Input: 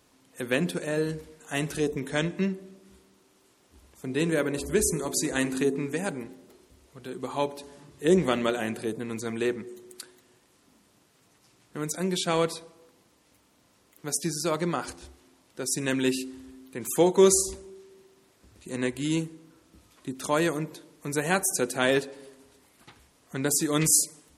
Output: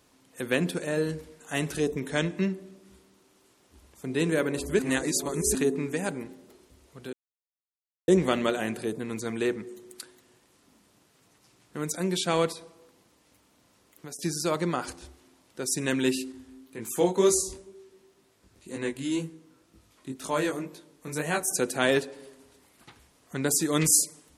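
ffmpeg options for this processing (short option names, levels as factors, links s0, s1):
-filter_complex "[0:a]asettb=1/sr,asplit=3[s0][s1][s2];[s0]atrim=end=12.524[s3];[s1]atrim=start=12.52:end=14.19,asetpts=PTS-STARTPTS,afade=t=in:d=0.004:c=qsin,afade=t=out:st=1.666:d=0.004:c=qsin,acompressor=threshold=0.0141:ratio=6:attack=3.2:release=140:knee=1:detection=peak[s4];[s2]atrim=start=14.186[s5];[s3][s4]acrossfade=d=0.004:c1=hsin:c2=qsin[s6];[s6][s5]acrossfade=d=0.004:c1=qsin:c2=hsin,asettb=1/sr,asplit=3[s7][s8][s9];[s7]atrim=end=16.324[s10];[s8]atrim=start=16.32:end=21.48,asetpts=PTS-STARTPTS,afade=t=in:d=0.004:c=qsin,afade=t=out:st=5.156:d=0.004:c=qsin,flanger=delay=18:depth=5.1:speed=2[s11];[s9]atrim=start=21.476[s12];[s10][s11]acrossfade=d=0.004:c1=hsin:c2=qsin[s13];[s13][s12]acrossfade=d=0.004:c1=qsin:c2=hsin,asplit=5[s14][s15][s16][s17][s18];[s14]atrim=end=4.792[s19];[s15]atrim=start=4.788:end=5.552,asetpts=PTS-STARTPTS,areverse[s20];[s16]atrim=start=5.548:end=7.13,asetpts=PTS-STARTPTS,afade=t=out:st=1.578:d=0.004:c=hsin[s21];[s17]atrim=start=7.13:end=8.08,asetpts=PTS-STARTPTS,volume=0[s22];[s18]atrim=start=8.08,asetpts=PTS-STARTPTS,afade=t=in:d=0.004:c=hsin[s23];[s19][s20]acrossfade=d=0.004:c1=hsin:c2=hsin[s24];[s21][s22][s23]concat=n=3:v=0:a=1[s25];[s24][s25]acrossfade=d=0.004:c1=hsin:c2=hsin"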